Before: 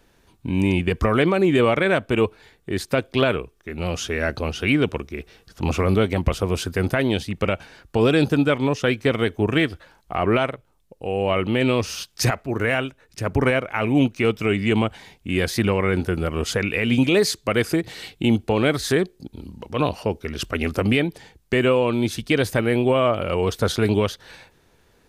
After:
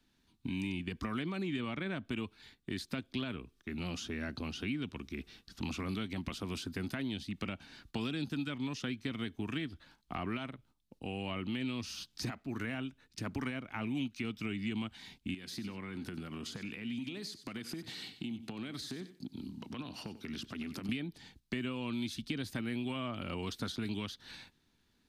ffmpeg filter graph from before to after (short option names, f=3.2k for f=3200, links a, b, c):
-filter_complex "[0:a]asettb=1/sr,asplit=3[a][b][c];[a]atrim=end=1.434[d];[b]atrim=start=1.43:end=2.05,asetpts=PTS-STARTPTS,afade=t=in:d=0.004:c=qsin,afade=t=out:st=0.616:d=0.004:c=qsin,lowpass=11k,equalizer=f=8.5k:w=0.53:g=-4.5[e];[c]atrim=start=2.046[f];[d][e]acrossfade=d=0.004:c1=hsin:c2=qsin[g];[g][f]acrossfade=d=0.004:c1=qsin:c2=hsin,asettb=1/sr,asplit=3[h][i][j];[h]atrim=end=15.344[k];[i]atrim=start=15.34:end=20.89,asetpts=PTS-STARTPTS,afade=t=in:d=0.004:c=qsin,afade=t=out:st=5.546:d=0.004:c=qsin,highpass=120,acompressor=threshold=-30dB:ratio=8:attack=3.2:release=140:knee=1:detection=peak,aecho=1:1:93|186:0.178|0.0409,atrim=end_sample=244755[l];[j]atrim=start=20.886[m];[k][l]acrossfade=d=0.004:c1=hsin:c2=qsin[n];[n][m]acrossfade=d=0.004:c1=qsin:c2=hsin,agate=range=-8dB:threshold=-50dB:ratio=16:detection=peak,equalizer=f=250:t=o:w=1:g=10,equalizer=f=500:t=o:w=1:g=-11,equalizer=f=4k:t=o:w=1:g=8,acrossover=split=160|1100[o][p][q];[o]acompressor=threshold=-38dB:ratio=4[r];[p]acompressor=threshold=-31dB:ratio=4[s];[q]acompressor=threshold=-35dB:ratio=4[t];[r][s][t]amix=inputs=3:normalize=0,volume=-8.5dB"